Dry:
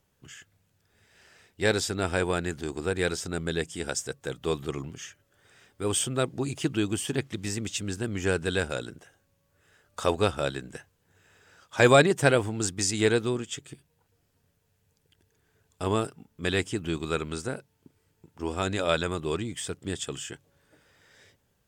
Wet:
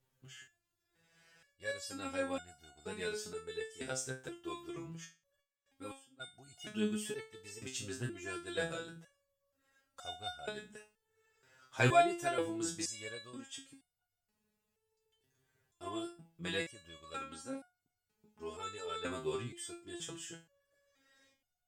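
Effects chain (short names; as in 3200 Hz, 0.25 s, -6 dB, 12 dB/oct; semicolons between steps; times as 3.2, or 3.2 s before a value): 5.03–6.19 step gate ".xxx.....xx.." 175 bpm -24 dB; stepped resonator 2.1 Hz 130–720 Hz; gain +3 dB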